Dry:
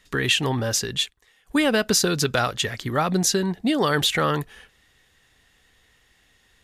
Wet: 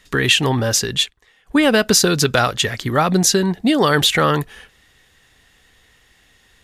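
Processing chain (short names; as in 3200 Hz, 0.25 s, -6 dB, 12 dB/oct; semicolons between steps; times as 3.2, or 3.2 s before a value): 1.03–1.62 high shelf 8500 Hz -> 4500 Hz -10.5 dB; gain +6 dB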